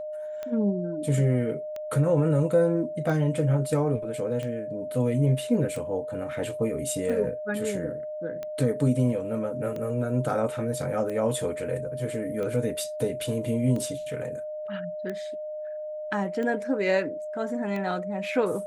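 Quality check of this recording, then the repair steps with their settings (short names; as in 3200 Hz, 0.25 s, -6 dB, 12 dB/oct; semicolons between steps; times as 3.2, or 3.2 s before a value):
tick 45 rpm -22 dBFS
tone 610 Hz -32 dBFS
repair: de-click; notch 610 Hz, Q 30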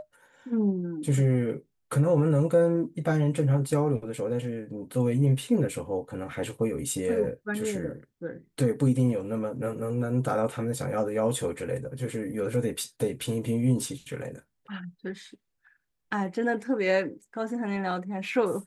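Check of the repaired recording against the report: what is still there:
none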